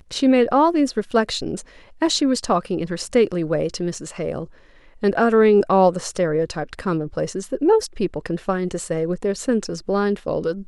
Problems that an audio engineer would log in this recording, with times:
1.11 s: dropout 4.8 ms

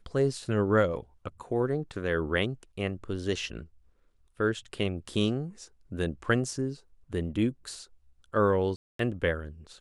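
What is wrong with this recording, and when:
8.76–8.99 s: dropout 233 ms

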